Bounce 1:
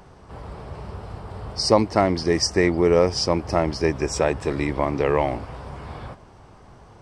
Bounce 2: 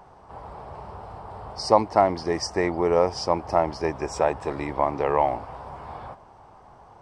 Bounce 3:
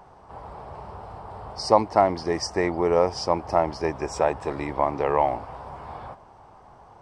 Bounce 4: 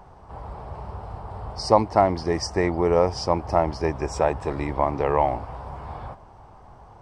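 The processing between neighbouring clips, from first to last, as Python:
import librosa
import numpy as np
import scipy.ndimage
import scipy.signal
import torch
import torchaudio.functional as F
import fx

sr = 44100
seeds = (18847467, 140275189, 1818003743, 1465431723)

y1 = fx.peak_eq(x, sr, hz=840.0, db=13.0, octaves=1.3)
y1 = y1 * 10.0 ** (-8.5 / 20.0)
y2 = y1
y3 = fx.low_shelf(y2, sr, hz=130.0, db=11.0)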